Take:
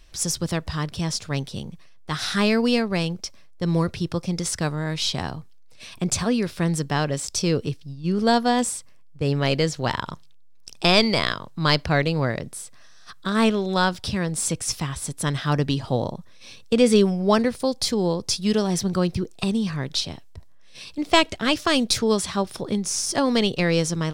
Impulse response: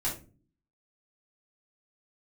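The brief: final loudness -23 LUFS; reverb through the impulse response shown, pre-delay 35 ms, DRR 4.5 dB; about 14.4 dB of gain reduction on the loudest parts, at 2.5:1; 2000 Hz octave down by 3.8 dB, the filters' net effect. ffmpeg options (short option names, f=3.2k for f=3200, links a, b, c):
-filter_complex "[0:a]equalizer=f=2k:t=o:g=-5,acompressor=threshold=-35dB:ratio=2.5,asplit=2[a][b];[1:a]atrim=start_sample=2205,adelay=35[c];[b][c]afir=irnorm=-1:irlink=0,volume=-10dB[d];[a][d]amix=inputs=2:normalize=0,volume=9.5dB"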